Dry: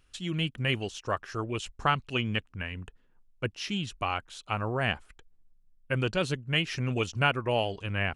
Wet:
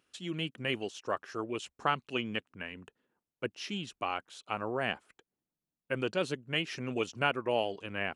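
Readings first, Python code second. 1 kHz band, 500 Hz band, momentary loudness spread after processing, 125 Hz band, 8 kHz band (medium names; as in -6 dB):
-3.5 dB, -1.5 dB, 9 LU, -11.5 dB, -5.0 dB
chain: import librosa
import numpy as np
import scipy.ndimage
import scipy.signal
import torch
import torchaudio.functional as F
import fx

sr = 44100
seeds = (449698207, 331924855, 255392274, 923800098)

y = scipy.signal.sosfilt(scipy.signal.butter(2, 310.0, 'highpass', fs=sr, output='sos'), x)
y = fx.low_shelf(y, sr, hz=450.0, db=9.0)
y = y * librosa.db_to_amplitude(-5.0)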